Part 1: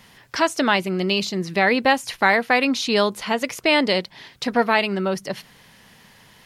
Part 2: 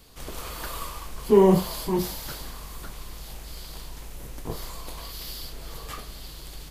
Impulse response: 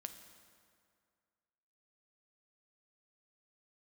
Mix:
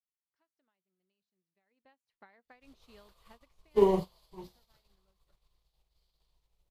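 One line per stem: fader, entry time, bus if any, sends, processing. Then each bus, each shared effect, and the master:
0:01.63 −20.5 dB → 0:02.02 −11.5 dB → 0:03.33 −11.5 dB → 0:03.91 −22.5 dB, 0.00 s, no send, downward compressor 6 to 1, threshold −19 dBFS, peak gain reduction 8 dB
−2.0 dB, 2.45 s, no send, graphic EQ with 15 bands 250 Hz −12 dB, 1,600 Hz −7 dB, 4,000 Hz +6 dB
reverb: not used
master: high-shelf EQ 4,800 Hz −9 dB; expander for the loud parts 2.5 to 1, over −45 dBFS

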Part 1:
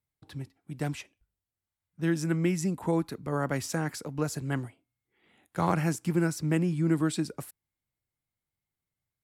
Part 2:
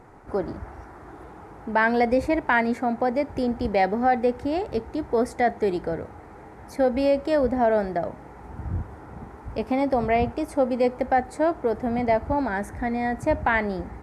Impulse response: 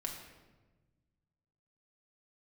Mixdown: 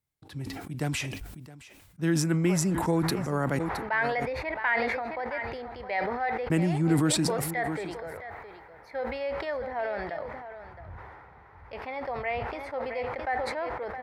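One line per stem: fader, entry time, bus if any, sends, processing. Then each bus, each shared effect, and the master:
+1.0 dB, 0.00 s, muted 0:03.59–0:06.50, no send, echo send −19 dB, no processing
−16.5 dB, 2.15 s, no send, echo send −12 dB, octave-band graphic EQ 250/500/1,000/2,000/4,000/8,000 Hz −10/+4/+6/+12/+9/−12 dB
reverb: not used
echo: single-tap delay 666 ms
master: level that may fall only so fast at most 29 dB per second

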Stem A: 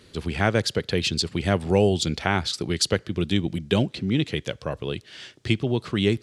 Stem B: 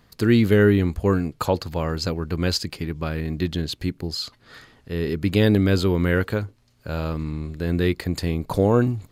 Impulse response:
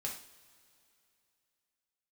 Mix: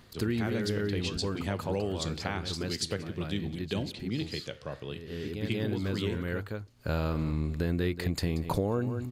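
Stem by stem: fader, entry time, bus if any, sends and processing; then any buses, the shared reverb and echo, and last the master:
−6.0 dB, 0.00 s, send −16 dB, echo send −22.5 dB, flanger 0.74 Hz, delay 7.5 ms, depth 7.5 ms, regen +81%
+1.0 dB, 0.00 s, no send, echo send −14 dB, automatic ducking −21 dB, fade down 0.75 s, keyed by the first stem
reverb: on, pre-delay 3 ms
echo: single-tap delay 183 ms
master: downward compressor 6 to 1, threshold −26 dBFS, peak gain reduction 14 dB

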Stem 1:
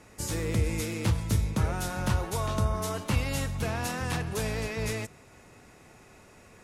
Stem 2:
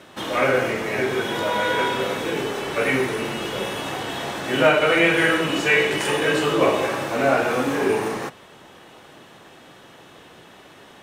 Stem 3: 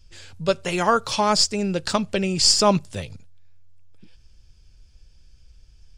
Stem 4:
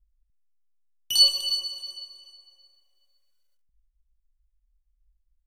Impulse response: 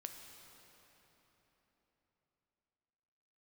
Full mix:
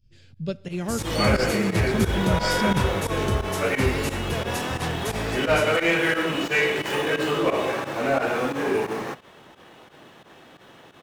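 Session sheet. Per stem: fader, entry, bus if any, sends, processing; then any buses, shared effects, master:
+2.0 dB, 0.70 s, no send, no processing
−2.0 dB, 0.85 s, no send, running median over 5 samples; soft clipping −10.5 dBFS, distortion −19 dB
−12.0 dB, 0.00 s, send −8 dB, graphic EQ with 10 bands 125 Hz +11 dB, 250 Hz +9 dB, 1,000 Hz −10 dB, 8,000 Hz −10 dB
−14.0 dB, 0.00 s, no send, no processing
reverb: on, RT60 4.1 s, pre-delay 5 ms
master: fake sidechain pumping 88 BPM, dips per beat 2, −15 dB, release 73 ms

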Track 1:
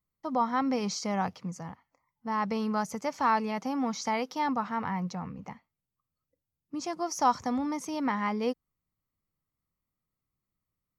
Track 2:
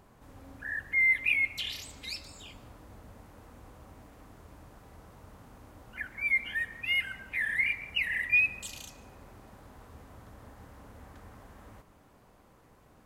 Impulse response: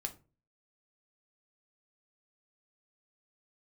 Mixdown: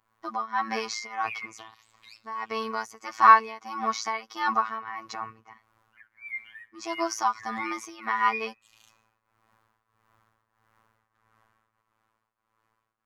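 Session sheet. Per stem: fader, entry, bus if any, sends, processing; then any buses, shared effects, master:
−2.0 dB, 0.00 s, no send, comb filter 2.7 ms, depth 84%
−18.0 dB, 0.00 s, no send, no processing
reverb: not used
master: drawn EQ curve 260 Hz 0 dB, 710 Hz +4 dB, 1,100 Hz +15 dB, 8,700 Hz +6 dB; phases set to zero 111 Hz; shaped tremolo triangle 1.6 Hz, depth 85%

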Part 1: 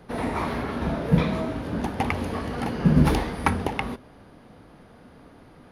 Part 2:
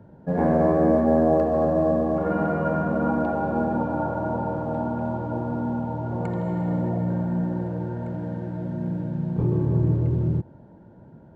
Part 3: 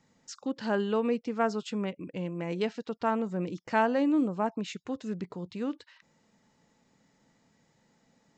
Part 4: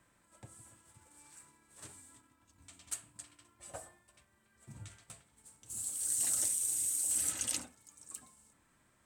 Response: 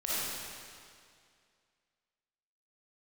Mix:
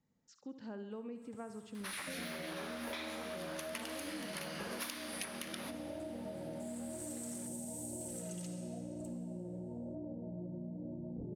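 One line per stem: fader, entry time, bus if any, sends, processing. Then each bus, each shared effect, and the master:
−1.0 dB, 1.75 s, no bus, send −19 dB, no echo send, gate on every frequency bin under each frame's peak −15 dB weak; spectral tilt +4 dB per octave
−3.0 dB, 1.80 s, bus A, no send, no echo send, Chebyshev low-pass filter 700 Hz, order 4; comb filter 3.4 ms, depth 36%
−19.5 dB, 0.00 s, no bus, no send, echo send −11.5 dB, low-shelf EQ 450 Hz +9.5 dB
−4.0 dB, 0.90 s, bus A, send −15.5 dB, no echo send, noise gate with hold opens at −59 dBFS
bus A: 0.0 dB, flanger 1 Hz, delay 2.9 ms, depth 3 ms, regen +20%; downward compressor 3 to 1, threshold −35 dBFS, peak gain reduction 11.5 dB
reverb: on, RT60 2.2 s, pre-delay 15 ms
echo: repeating echo 68 ms, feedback 55%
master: downward compressor 5 to 1, threshold −41 dBFS, peak gain reduction 17.5 dB

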